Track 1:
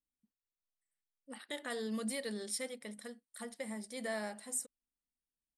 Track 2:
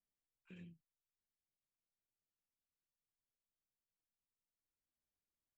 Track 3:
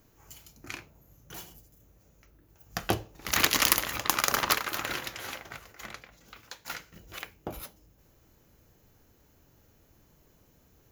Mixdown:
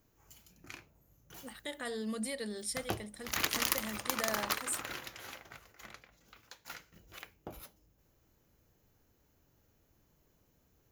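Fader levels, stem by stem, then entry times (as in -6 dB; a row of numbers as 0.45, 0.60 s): +0.5, -13.5, -8.5 dB; 0.15, 0.00, 0.00 s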